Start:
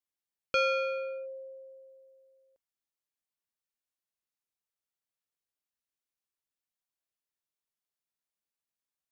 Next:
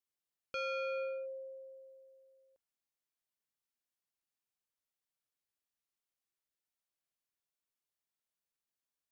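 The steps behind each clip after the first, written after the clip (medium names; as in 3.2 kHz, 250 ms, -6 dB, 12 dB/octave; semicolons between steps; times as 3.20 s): peak limiter -32 dBFS, peak gain reduction 10.5 dB; trim -2 dB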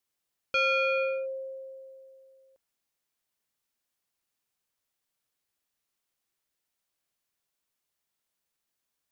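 dynamic bell 2.5 kHz, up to +7 dB, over -55 dBFS, Q 0.91; trim +8.5 dB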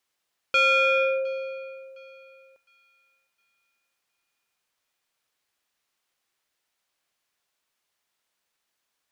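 thinning echo 710 ms, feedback 33%, high-pass 970 Hz, level -22.5 dB; overdrive pedal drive 7 dB, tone 4.2 kHz, clips at -18.5 dBFS; trim +5.5 dB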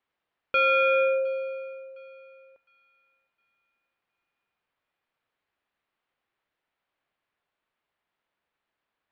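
distance through air 420 m; trim +2.5 dB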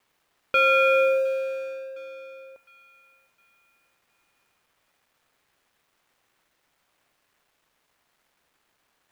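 companding laws mixed up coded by mu; trim +2 dB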